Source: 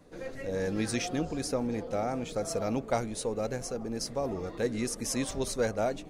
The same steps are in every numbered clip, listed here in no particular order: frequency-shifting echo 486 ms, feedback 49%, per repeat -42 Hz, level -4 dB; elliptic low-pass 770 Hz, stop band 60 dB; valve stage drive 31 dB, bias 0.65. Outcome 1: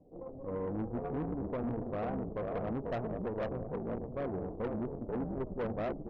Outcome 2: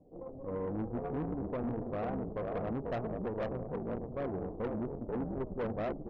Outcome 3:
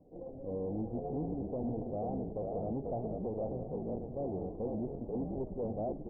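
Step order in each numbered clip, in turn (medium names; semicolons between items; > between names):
elliptic low-pass > frequency-shifting echo > valve stage; frequency-shifting echo > elliptic low-pass > valve stage; frequency-shifting echo > valve stage > elliptic low-pass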